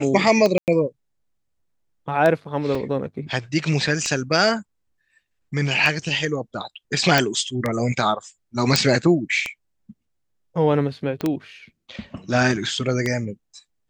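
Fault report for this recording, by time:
scratch tick 33 1/3 rpm −9 dBFS
0:00.58–0:00.68: drop-out 98 ms
0:02.75: drop-out 3.6 ms
0:07.18: click
0:08.76: click −1 dBFS
0:11.21: click −14 dBFS

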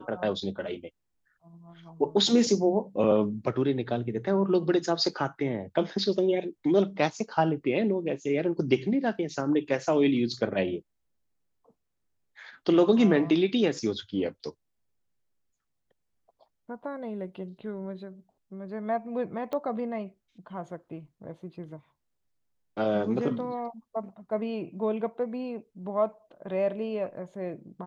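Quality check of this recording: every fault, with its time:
0:19.53: click −22 dBFS

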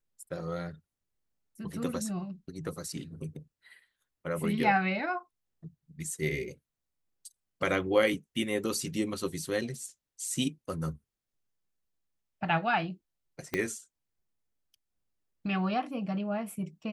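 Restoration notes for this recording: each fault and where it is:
0:13.54: click −15 dBFS

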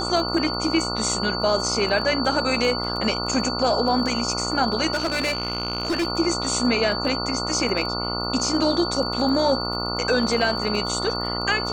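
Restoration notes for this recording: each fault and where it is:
mains buzz 60 Hz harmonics 24 −29 dBFS
surface crackle 21 per second −29 dBFS
whistle 4,500 Hz −28 dBFS
0:04.93–0:06.07: clipping −19.5 dBFS

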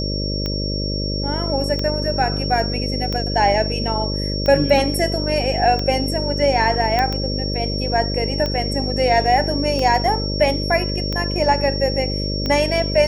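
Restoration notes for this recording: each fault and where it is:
mains buzz 50 Hz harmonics 12 −24 dBFS
scratch tick 45 rpm −11 dBFS
whistle 5,500 Hz −26 dBFS
0:06.99: click −7 dBFS

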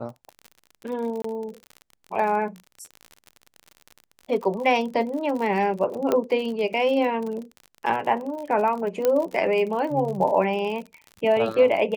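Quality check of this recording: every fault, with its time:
surface crackle 50 per second −31 dBFS
0:01.22–0:01.24: drop-out 24 ms
0:06.12: click −10 dBFS
0:09.05: click −9 dBFS

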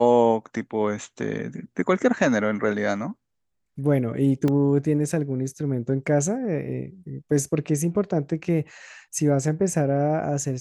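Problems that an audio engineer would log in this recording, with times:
0:04.48: drop-out 2.2 ms

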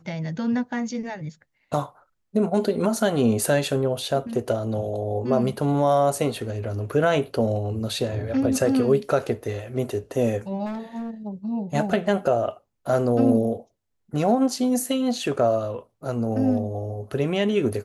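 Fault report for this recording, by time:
0:10.65–0:11.11: clipping −27.5 dBFS

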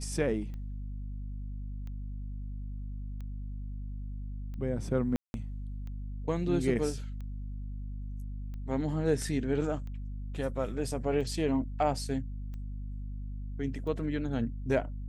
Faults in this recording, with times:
mains hum 50 Hz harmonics 5 −38 dBFS
scratch tick 45 rpm −33 dBFS
0:05.16–0:05.34: drop-out 181 ms

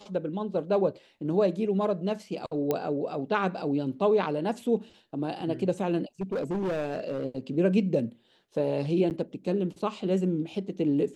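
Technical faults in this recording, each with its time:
0:02.71: click −14 dBFS
0:06.21–0:07.25: clipping −26 dBFS
0:09.10–0:09.11: drop-out 8.7 ms

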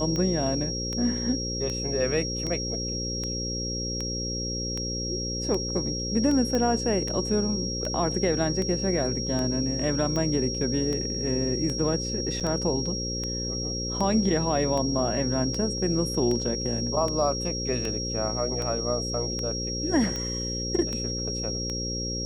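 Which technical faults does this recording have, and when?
mains buzz 60 Hz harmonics 9 −33 dBFS
scratch tick 78 rpm −18 dBFS
whistle 5,600 Hz −31 dBFS
0:06.55: click −15 dBFS
0:12.40–0:12.41: drop-out 6.8 ms

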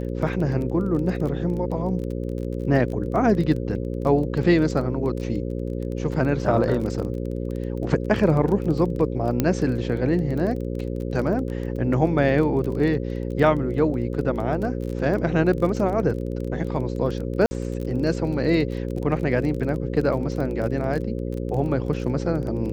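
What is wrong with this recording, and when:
mains buzz 60 Hz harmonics 9 −28 dBFS
surface crackle 21 per second −29 dBFS
0:09.40: click −7 dBFS
0:17.46–0:17.51: drop-out 50 ms

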